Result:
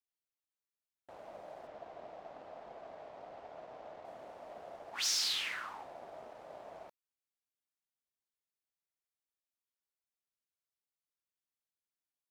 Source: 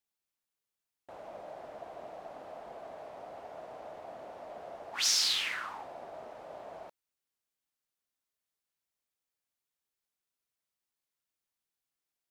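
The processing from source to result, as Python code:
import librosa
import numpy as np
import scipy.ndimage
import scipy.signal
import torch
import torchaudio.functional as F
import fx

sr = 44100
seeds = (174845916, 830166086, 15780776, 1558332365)

y = fx.leveller(x, sr, passes=1)
y = fx.lowpass(y, sr, hz=5700.0, slope=12, at=(1.67, 4.05))
y = y * librosa.db_to_amplitude(-7.5)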